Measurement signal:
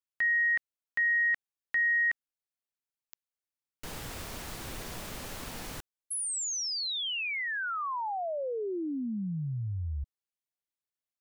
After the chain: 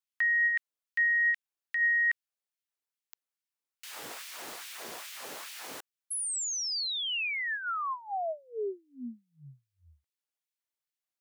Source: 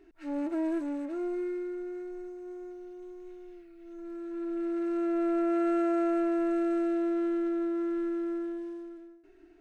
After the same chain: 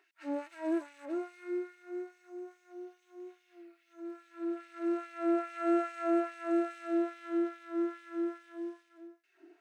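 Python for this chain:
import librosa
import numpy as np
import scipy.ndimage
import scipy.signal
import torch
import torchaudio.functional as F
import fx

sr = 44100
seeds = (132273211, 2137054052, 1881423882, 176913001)

y = fx.filter_lfo_highpass(x, sr, shape='sine', hz=2.4, low_hz=320.0, high_hz=2500.0, q=1.1)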